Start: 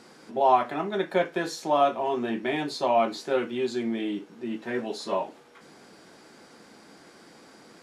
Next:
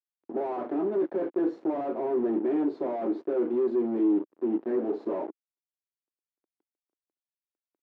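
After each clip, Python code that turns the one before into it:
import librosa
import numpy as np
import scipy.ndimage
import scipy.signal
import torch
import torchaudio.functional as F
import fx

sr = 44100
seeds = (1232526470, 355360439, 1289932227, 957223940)

y = fx.fuzz(x, sr, gain_db=38.0, gate_db=-41.0)
y = fx.ladder_bandpass(y, sr, hz=370.0, resonance_pct=55)
y = y * librosa.db_to_amplitude(-2.5)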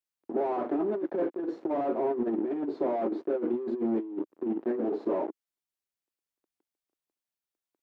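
y = fx.over_compress(x, sr, threshold_db=-28.0, ratio=-0.5)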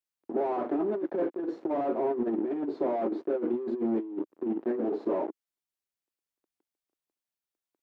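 y = x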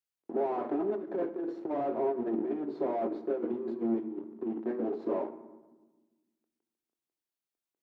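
y = fx.rev_fdn(x, sr, rt60_s=1.2, lf_ratio=1.55, hf_ratio=0.6, size_ms=43.0, drr_db=10.0)
y = fx.end_taper(y, sr, db_per_s=140.0)
y = y * librosa.db_to_amplitude(-3.0)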